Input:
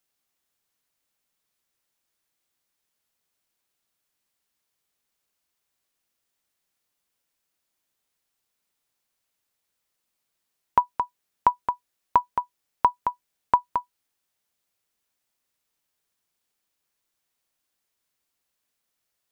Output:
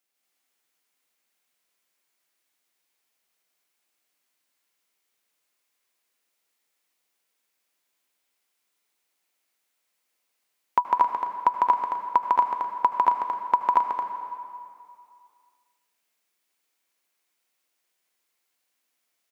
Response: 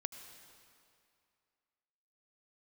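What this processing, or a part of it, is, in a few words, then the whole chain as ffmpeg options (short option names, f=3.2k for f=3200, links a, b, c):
stadium PA: -filter_complex "[0:a]highpass=230,equalizer=f=2.2k:t=o:w=0.48:g=4,aecho=1:1:151.6|233.2|268.2:0.891|0.891|0.282[a];[1:a]atrim=start_sample=2205[b];[a][b]afir=irnorm=-1:irlink=0"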